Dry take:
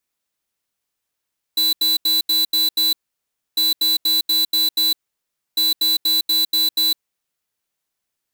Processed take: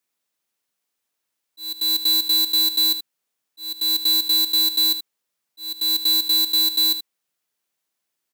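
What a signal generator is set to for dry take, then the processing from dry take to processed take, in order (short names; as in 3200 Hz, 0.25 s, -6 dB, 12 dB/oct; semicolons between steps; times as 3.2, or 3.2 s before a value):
beep pattern square 3980 Hz, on 0.16 s, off 0.08 s, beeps 6, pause 0.64 s, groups 3, -17 dBFS
HPF 150 Hz 12 dB/oct; auto swell 0.426 s; on a send: echo 78 ms -11.5 dB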